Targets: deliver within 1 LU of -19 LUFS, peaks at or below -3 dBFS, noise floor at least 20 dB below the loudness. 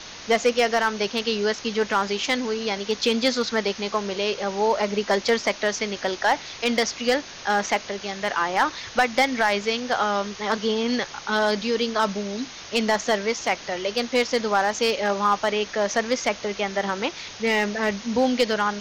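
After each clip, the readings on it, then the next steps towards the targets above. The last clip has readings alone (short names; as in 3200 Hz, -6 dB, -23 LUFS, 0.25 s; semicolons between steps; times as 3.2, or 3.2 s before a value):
clipped 0.3%; flat tops at -11.5 dBFS; noise floor -40 dBFS; noise floor target -44 dBFS; loudness -23.5 LUFS; peak -11.5 dBFS; loudness target -19.0 LUFS
-> clip repair -11.5 dBFS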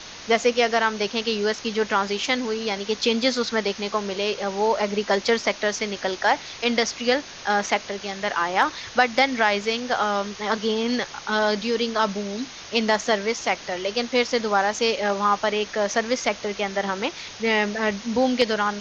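clipped 0.0%; noise floor -40 dBFS; noise floor target -44 dBFS
-> noise print and reduce 6 dB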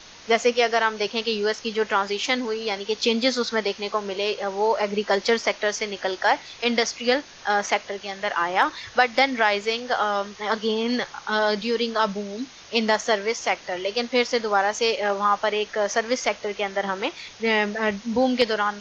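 noise floor -45 dBFS; loudness -23.5 LUFS; peak -3.0 dBFS; loudness target -19.0 LUFS
-> gain +4.5 dB; limiter -3 dBFS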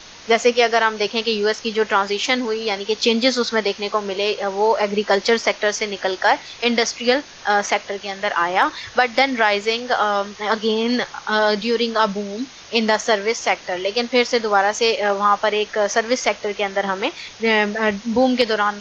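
loudness -19.5 LUFS; peak -3.0 dBFS; noise floor -41 dBFS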